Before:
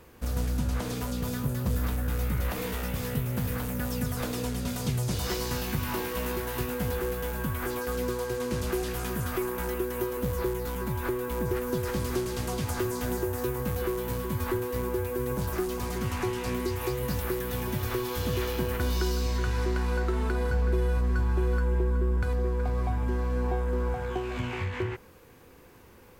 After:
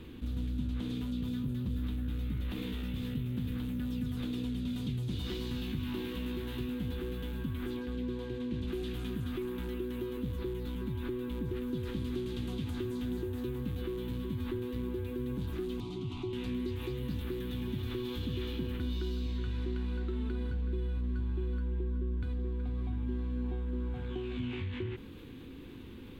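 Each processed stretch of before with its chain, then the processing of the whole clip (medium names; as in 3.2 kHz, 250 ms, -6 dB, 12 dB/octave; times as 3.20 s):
7.76–8.68 s: low-pass 3.4 kHz 6 dB/octave + band-stop 1.3 kHz, Q 6.5
15.80–16.33 s: low-pass 6.2 kHz + static phaser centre 340 Hz, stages 8
whole clip: FFT filter 180 Hz 0 dB, 270 Hz +7 dB, 600 Hz -15 dB, 2 kHz -8 dB, 3.6 kHz +3 dB, 5.2 kHz -16 dB; level flattener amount 50%; trim -8.5 dB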